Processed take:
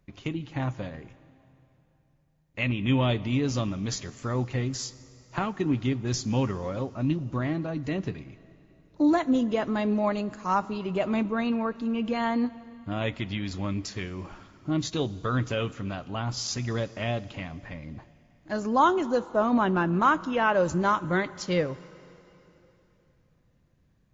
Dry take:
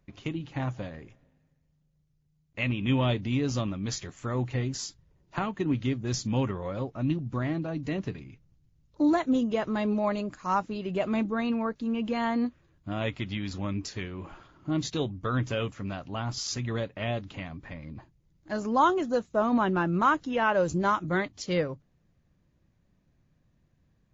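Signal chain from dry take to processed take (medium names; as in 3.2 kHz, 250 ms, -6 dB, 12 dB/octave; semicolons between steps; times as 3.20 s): plate-style reverb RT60 3.3 s, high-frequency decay 0.95×, DRR 17.5 dB; trim +1.5 dB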